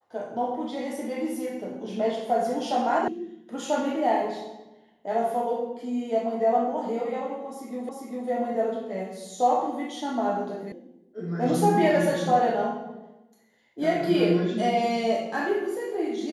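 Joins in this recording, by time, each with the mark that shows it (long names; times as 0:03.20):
0:03.08: cut off before it has died away
0:07.89: the same again, the last 0.4 s
0:10.72: cut off before it has died away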